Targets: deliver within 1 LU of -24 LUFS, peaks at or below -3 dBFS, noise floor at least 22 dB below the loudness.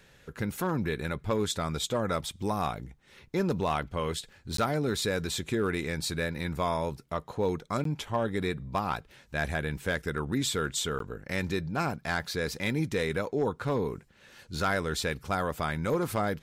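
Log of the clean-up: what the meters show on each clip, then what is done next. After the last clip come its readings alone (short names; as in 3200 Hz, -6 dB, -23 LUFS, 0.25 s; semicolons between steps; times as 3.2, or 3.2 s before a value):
clipped 0.4%; flat tops at -19.5 dBFS; dropouts 3; longest dropout 13 ms; loudness -31.0 LUFS; peak -19.5 dBFS; loudness target -24.0 LUFS
-> clip repair -19.5 dBFS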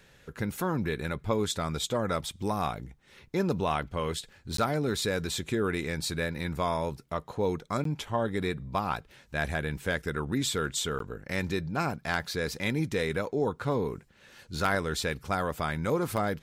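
clipped 0.0%; dropouts 3; longest dropout 13 ms
-> interpolate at 4.57/7.84/10.99, 13 ms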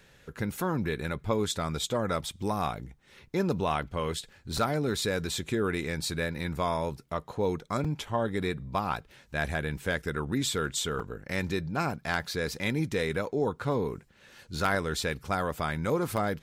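dropouts 0; loudness -31.0 LUFS; peak -11.5 dBFS; loudness target -24.0 LUFS
-> gain +7 dB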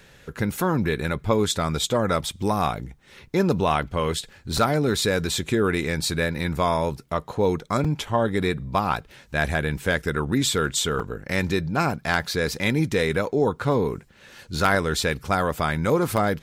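loudness -24.0 LUFS; peak -4.5 dBFS; noise floor -52 dBFS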